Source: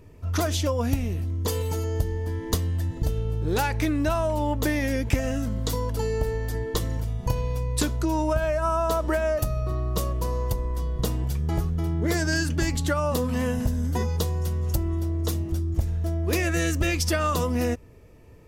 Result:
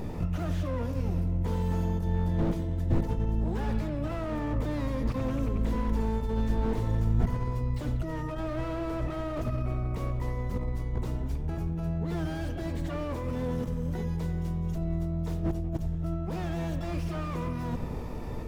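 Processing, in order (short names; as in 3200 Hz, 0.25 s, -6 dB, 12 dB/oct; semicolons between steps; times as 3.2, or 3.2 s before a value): tilt shelf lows +3 dB; notches 50/100/150 Hz; negative-ratio compressor -33 dBFS, ratio -1; harmoniser -12 st -3 dB, +12 st -4 dB; on a send: analogue delay 91 ms, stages 2048, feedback 75%, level -14 dB; on the sum: slew limiter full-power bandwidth 16 Hz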